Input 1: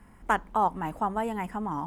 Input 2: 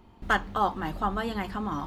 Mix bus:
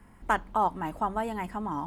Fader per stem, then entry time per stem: -1.0 dB, -14.0 dB; 0.00 s, 0.00 s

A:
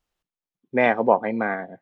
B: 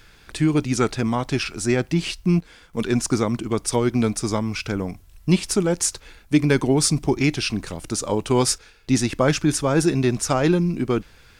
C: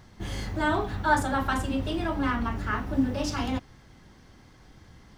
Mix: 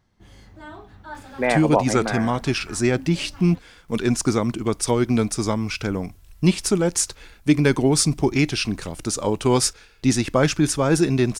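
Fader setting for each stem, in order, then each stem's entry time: -2.0 dB, +0.5 dB, -14.5 dB; 0.65 s, 1.15 s, 0.00 s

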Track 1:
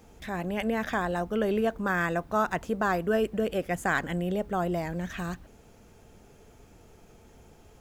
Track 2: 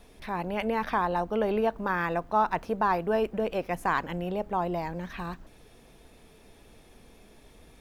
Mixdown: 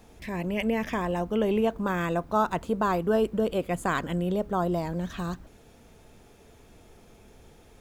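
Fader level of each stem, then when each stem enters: -1.0 dB, -4.0 dB; 0.00 s, 0.00 s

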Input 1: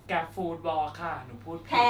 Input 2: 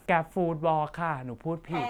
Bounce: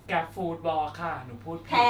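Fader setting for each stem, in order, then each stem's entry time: +1.0 dB, -13.0 dB; 0.00 s, 0.00 s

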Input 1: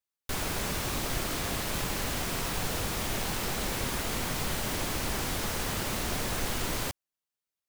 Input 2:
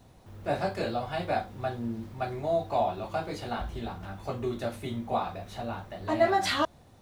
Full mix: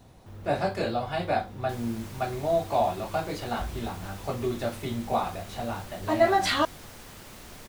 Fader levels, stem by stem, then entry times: -14.0 dB, +2.5 dB; 1.40 s, 0.00 s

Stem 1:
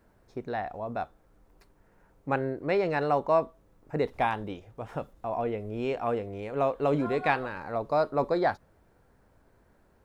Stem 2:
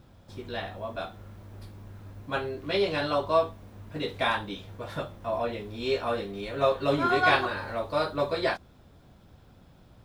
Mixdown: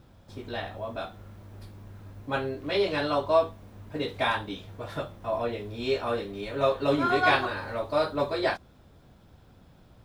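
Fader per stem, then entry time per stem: -7.5 dB, -0.5 dB; 0.00 s, 0.00 s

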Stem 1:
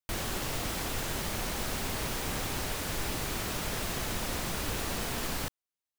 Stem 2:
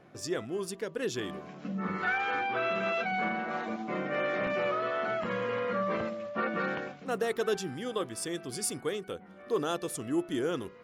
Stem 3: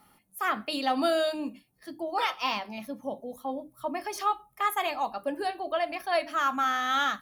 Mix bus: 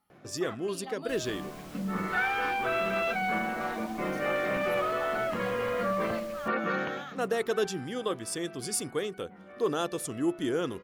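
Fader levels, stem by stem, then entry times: -17.0 dB, +1.5 dB, -16.5 dB; 1.00 s, 0.10 s, 0.00 s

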